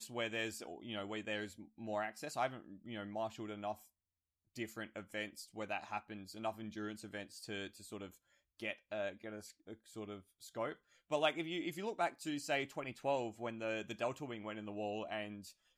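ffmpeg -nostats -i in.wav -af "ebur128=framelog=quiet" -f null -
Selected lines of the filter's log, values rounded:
Integrated loudness:
  I:         -42.5 LUFS
  Threshold: -52.8 LUFS
Loudness range:
  LRA:         7.3 LU
  Threshold: -62.9 LUFS
  LRA low:   -46.7 LUFS
  LRA high:  -39.4 LUFS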